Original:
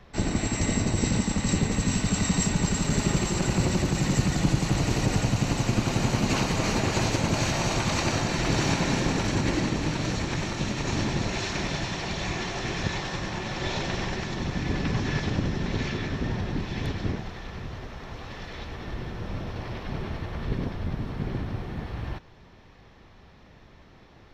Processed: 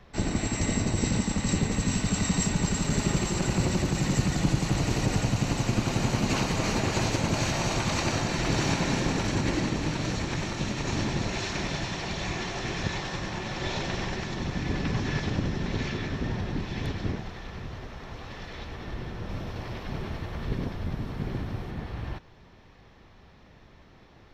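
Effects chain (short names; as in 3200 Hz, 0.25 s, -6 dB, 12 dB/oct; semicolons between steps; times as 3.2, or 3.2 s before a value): 19.29–21.71 high shelf 7600 Hz +7 dB; gain -1.5 dB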